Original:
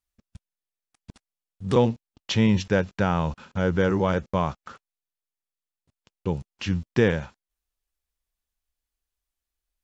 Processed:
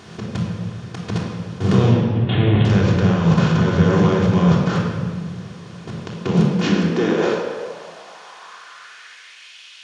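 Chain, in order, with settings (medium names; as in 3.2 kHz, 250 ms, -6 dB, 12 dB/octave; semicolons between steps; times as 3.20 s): spectral levelling over time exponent 0.4; peaking EQ 170 Hz +10 dB 0.21 oct; hum notches 50/100/150/200/250 Hz; peak limiter -14.5 dBFS, peak gain reduction 12 dB; 1.91–2.65 s: LPC vocoder at 8 kHz pitch kept; reverberation RT60 1.7 s, pre-delay 3 ms, DRR -4 dB; high-pass sweep 120 Hz -> 2.7 kHz, 6.06–9.57 s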